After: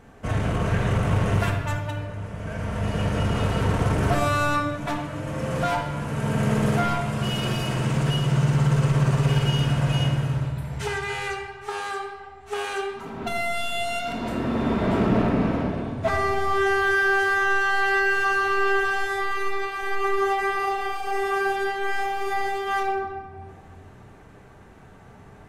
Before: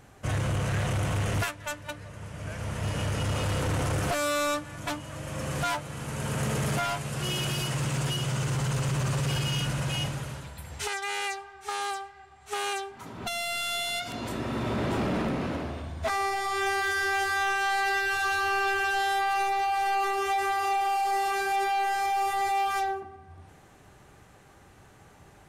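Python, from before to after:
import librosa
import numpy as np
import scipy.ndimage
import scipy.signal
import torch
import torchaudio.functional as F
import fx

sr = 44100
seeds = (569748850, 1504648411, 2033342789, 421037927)

y = fx.high_shelf(x, sr, hz=2800.0, db=-11.0)
y = fx.room_shoebox(y, sr, seeds[0], volume_m3=1300.0, walls='mixed', distance_m=1.6)
y = F.gain(torch.from_numpy(y), 4.0).numpy()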